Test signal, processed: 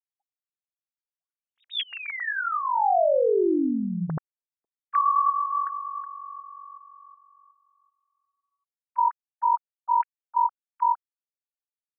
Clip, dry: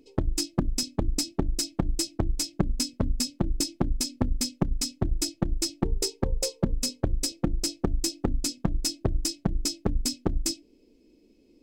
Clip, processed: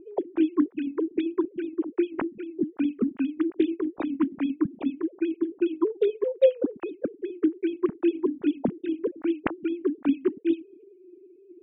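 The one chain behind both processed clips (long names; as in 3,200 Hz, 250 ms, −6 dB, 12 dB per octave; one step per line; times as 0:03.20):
three sine waves on the formant tracks
low-pass that shuts in the quiet parts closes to 840 Hz, open at −15.5 dBFS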